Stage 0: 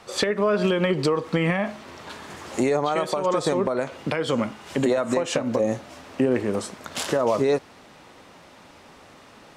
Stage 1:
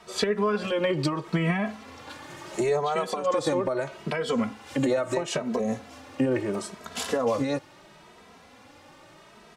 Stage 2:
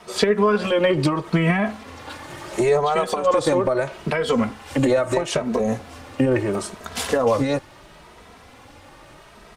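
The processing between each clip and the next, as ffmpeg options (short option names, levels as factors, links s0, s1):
-filter_complex "[0:a]asplit=2[s0][s1];[s1]adelay=2.7,afreqshift=0.75[s2];[s0][s2]amix=inputs=2:normalize=1"
-af "asubboost=boost=4:cutoff=86,volume=2.37" -ar 48000 -c:a libopus -b:a 24k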